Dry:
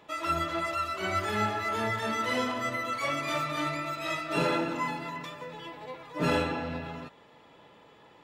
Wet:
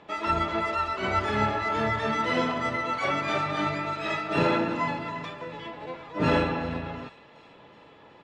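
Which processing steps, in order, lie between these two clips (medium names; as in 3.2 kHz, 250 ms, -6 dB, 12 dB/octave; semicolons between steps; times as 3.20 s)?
feedback echo behind a high-pass 372 ms, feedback 60%, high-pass 2.9 kHz, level -16 dB; harmony voices -7 st -8 dB; distance through air 110 m; trim +3.5 dB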